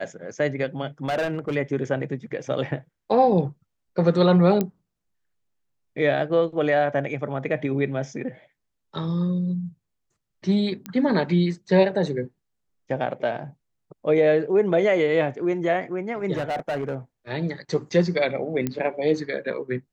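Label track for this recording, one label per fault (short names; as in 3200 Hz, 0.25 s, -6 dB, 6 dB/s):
1.050000	1.560000	clipped -21 dBFS
4.610000	4.610000	pop -10 dBFS
10.860000	10.860000	pop -16 dBFS
16.340000	16.950000	clipped -22.5 dBFS
18.670000	18.670000	pop -12 dBFS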